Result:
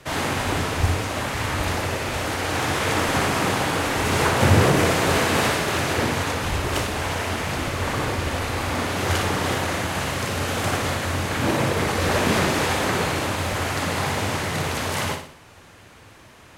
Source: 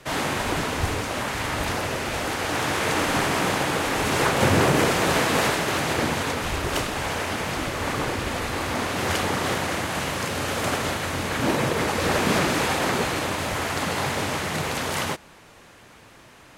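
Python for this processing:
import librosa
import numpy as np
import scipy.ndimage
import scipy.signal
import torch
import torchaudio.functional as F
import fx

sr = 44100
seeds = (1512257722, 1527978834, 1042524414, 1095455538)

p1 = fx.peak_eq(x, sr, hz=89.0, db=8.0, octaves=0.62)
y = p1 + fx.room_flutter(p1, sr, wall_m=10.1, rt60_s=0.49, dry=0)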